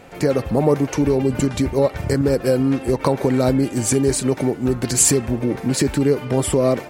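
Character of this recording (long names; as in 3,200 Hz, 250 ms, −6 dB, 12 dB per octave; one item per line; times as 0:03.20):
background noise floor −34 dBFS
spectral slope −5.0 dB per octave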